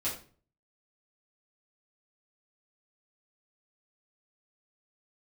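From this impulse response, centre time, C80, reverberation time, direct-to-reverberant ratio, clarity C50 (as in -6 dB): 28 ms, 11.5 dB, 0.40 s, -9.0 dB, 7.0 dB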